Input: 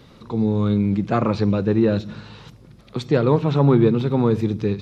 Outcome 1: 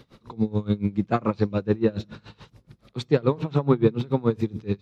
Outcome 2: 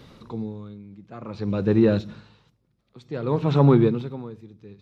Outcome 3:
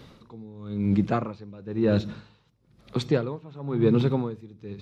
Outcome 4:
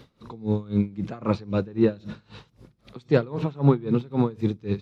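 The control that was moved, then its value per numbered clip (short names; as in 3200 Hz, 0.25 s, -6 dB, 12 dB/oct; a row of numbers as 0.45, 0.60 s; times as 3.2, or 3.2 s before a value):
dB-linear tremolo, rate: 7, 0.55, 1, 3.8 Hz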